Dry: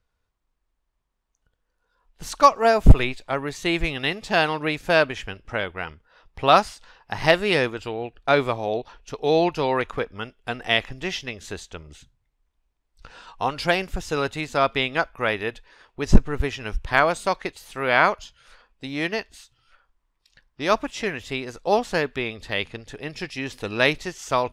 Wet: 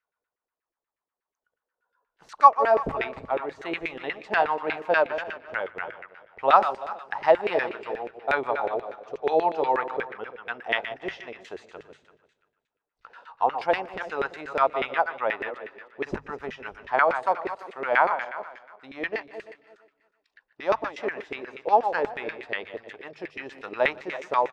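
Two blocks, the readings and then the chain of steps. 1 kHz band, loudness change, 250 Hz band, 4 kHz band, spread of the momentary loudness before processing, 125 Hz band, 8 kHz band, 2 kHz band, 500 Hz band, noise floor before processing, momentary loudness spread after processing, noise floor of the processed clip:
+0.5 dB, −3.0 dB, −10.5 dB, −12.5 dB, 15 LU, −21.5 dB, below −20 dB, −4.0 dB, −2.5 dB, −76 dBFS, 16 LU, below −85 dBFS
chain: feedback delay that plays each chunk backwards 169 ms, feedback 44%, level −9.5 dB
dynamic equaliser 870 Hz, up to +7 dB, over −39 dBFS, Q 5.3
in parallel at −2 dB: speech leveller within 3 dB 2 s
on the sum: auto-filter band-pass saw down 8.3 Hz 390–2,100 Hz
mains-hum notches 50/100/150 Hz
on a send: repeating echo 153 ms, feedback 49%, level −23 dB
on the sum: level −3.5 dB

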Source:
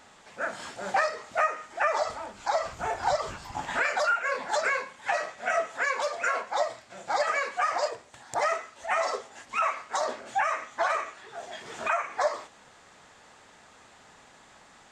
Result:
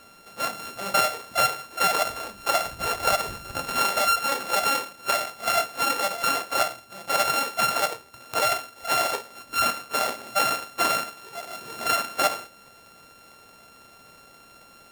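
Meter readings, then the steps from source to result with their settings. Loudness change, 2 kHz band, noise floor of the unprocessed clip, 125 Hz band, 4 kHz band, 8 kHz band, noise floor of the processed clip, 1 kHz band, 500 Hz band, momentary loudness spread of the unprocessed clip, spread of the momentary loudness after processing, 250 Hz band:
+4.5 dB, +1.0 dB, −55 dBFS, can't be measured, +12.5 dB, +11.5 dB, −52 dBFS, +3.0 dB, 0.0 dB, 9 LU, 8 LU, +9.0 dB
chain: samples sorted by size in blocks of 32 samples
level +3.5 dB

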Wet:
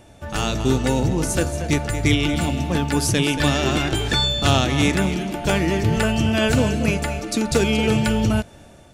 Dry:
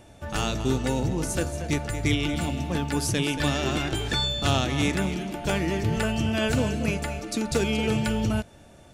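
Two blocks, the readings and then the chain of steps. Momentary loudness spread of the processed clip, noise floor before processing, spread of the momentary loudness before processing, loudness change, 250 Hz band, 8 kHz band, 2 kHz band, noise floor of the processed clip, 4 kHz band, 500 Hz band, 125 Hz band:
6 LU, −50 dBFS, 5 LU, +6.0 dB, +6.0 dB, +6.0 dB, +6.0 dB, −46 dBFS, +6.0 dB, +6.0 dB, +6.0 dB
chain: automatic gain control gain up to 3.5 dB
level +2.5 dB

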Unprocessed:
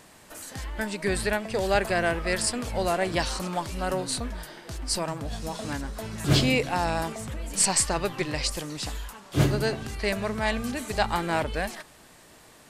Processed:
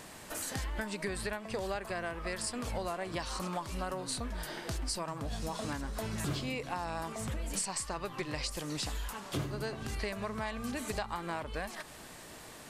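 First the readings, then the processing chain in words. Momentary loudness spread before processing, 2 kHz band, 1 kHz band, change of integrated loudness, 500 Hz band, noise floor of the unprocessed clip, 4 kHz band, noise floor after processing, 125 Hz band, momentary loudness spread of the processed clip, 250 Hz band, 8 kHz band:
12 LU, −10.0 dB, −9.0 dB, −10.0 dB, −10.5 dB, −53 dBFS, −9.5 dB, −50 dBFS, −10.0 dB, 4 LU, −9.5 dB, −10.0 dB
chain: dynamic equaliser 1,100 Hz, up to +7 dB, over −46 dBFS, Q 3.4
downward compressor 12 to 1, threshold −36 dBFS, peak gain reduction 20.5 dB
level +3 dB

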